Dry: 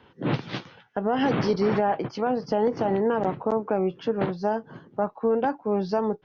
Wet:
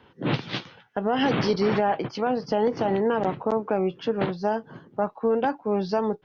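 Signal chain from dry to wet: dynamic EQ 3500 Hz, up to +6 dB, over -46 dBFS, Q 0.83

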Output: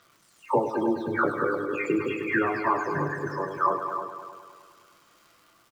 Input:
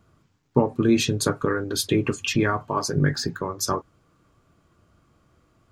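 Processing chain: spectral delay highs early, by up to 0.468 s; weighting filter ITU-R 468; treble ducked by the level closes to 900 Hz, closed at -21 dBFS; spectral gate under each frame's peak -15 dB strong; high shelf 3800 Hz -9.5 dB; crackle 370/s -55 dBFS; doubler 31 ms -13 dB; multi-head echo 0.103 s, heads all three, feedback 44%, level -11 dB; gain +6 dB

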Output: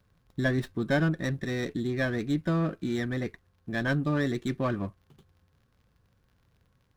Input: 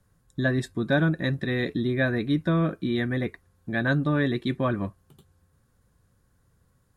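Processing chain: vocal rider within 4 dB 2 s; crackle 110/s -56 dBFS; running maximum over 5 samples; gain -3.5 dB

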